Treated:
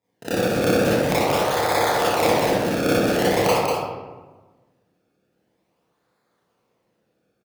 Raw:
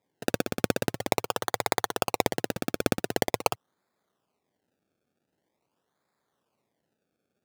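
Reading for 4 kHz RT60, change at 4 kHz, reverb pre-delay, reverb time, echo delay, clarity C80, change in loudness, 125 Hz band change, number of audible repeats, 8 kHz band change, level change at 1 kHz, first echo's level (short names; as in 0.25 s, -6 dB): 0.70 s, +7.5 dB, 24 ms, 1.3 s, 0.193 s, -1.5 dB, +9.0 dB, +10.0 dB, 1, +5.0 dB, +9.5 dB, -3.0 dB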